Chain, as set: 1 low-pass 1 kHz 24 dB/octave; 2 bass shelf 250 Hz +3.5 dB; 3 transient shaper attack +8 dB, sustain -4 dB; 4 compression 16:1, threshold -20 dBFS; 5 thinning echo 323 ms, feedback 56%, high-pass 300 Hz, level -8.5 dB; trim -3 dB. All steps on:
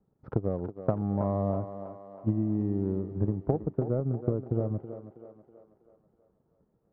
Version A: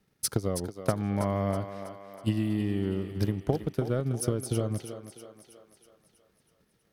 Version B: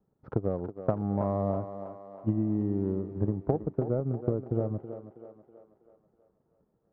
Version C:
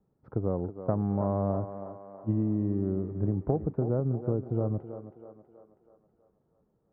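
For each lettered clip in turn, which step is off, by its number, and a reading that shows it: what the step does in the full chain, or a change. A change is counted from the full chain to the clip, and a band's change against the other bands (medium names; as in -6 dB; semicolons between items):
1, 1 kHz band +2.0 dB; 2, 125 Hz band -2.0 dB; 3, crest factor change -2.0 dB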